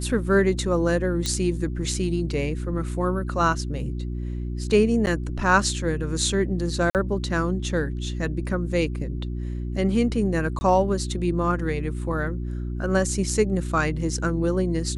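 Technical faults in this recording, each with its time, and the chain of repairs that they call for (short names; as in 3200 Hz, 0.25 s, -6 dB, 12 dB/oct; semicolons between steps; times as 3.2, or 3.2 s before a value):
hum 60 Hz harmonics 6 -29 dBFS
1.26 pop -12 dBFS
5.06–5.07 gap 9.8 ms
6.9–6.95 gap 48 ms
10.59–10.61 gap 20 ms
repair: de-click; de-hum 60 Hz, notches 6; interpolate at 5.06, 9.8 ms; interpolate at 6.9, 48 ms; interpolate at 10.59, 20 ms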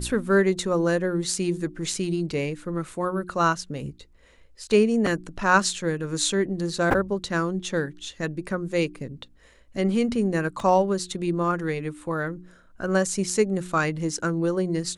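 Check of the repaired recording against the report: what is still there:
1.26 pop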